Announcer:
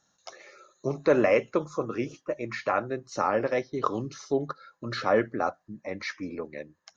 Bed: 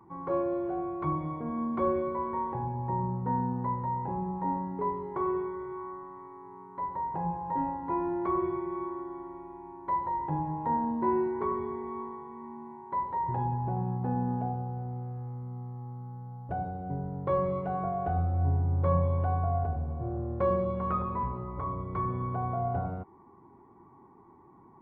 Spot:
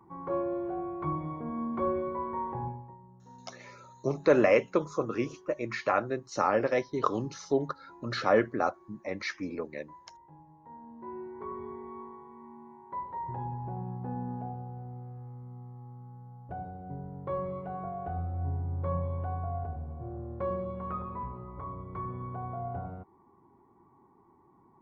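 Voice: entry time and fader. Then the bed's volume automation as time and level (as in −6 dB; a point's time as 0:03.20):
3.20 s, −0.5 dB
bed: 0:02.68 −2 dB
0:02.98 −23 dB
0:10.58 −23 dB
0:11.67 −6 dB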